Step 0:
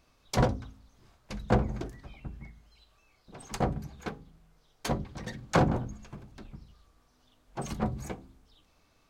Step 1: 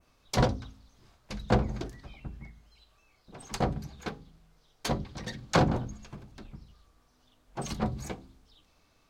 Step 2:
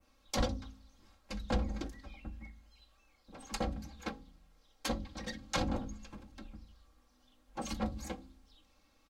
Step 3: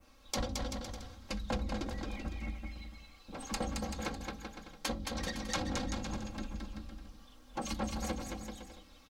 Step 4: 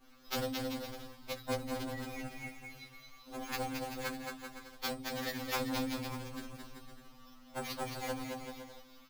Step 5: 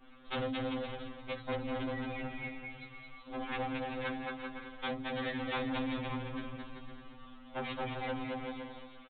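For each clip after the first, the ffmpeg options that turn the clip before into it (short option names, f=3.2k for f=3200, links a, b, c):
-af "adynamicequalizer=threshold=0.00158:dfrequency=4300:dqfactor=1.1:tfrequency=4300:tqfactor=1.1:attack=5:release=100:ratio=0.375:range=3.5:mode=boostabove:tftype=bell"
-filter_complex "[0:a]aecho=1:1:3.7:0.79,acrossover=split=120|2500[a][b][c];[b]alimiter=limit=-20dB:level=0:latency=1:release=217[d];[a][d][c]amix=inputs=3:normalize=0,volume=-5dB"
-filter_complex "[0:a]acompressor=threshold=-43dB:ratio=3,asplit=2[a][b];[b]aecho=0:1:220|385|508.8|601.6|671.2:0.631|0.398|0.251|0.158|0.1[c];[a][c]amix=inputs=2:normalize=0,volume=7dB"
-af "acrusher=samples=5:mix=1:aa=0.000001,afftfilt=real='re*2.45*eq(mod(b,6),0)':imag='im*2.45*eq(mod(b,6),0)':win_size=2048:overlap=0.75,volume=3dB"
-af "aresample=8000,asoftclip=type=tanh:threshold=-35dB,aresample=44100,aecho=1:1:346:0.224,volume=4.5dB"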